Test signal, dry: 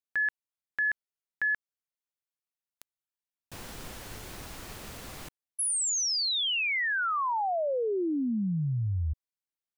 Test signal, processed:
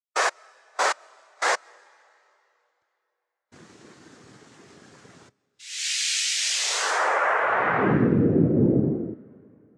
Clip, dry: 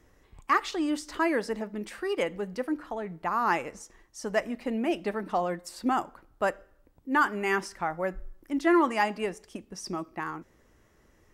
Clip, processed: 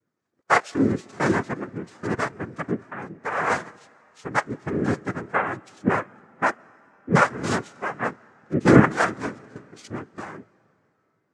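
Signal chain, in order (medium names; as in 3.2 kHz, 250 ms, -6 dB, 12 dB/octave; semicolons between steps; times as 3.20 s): noise-vocoded speech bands 3; algorithmic reverb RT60 4.7 s, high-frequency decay 0.9×, pre-delay 90 ms, DRR 16 dB; spectral contrast expander 1.5:1; trim +7.5 dB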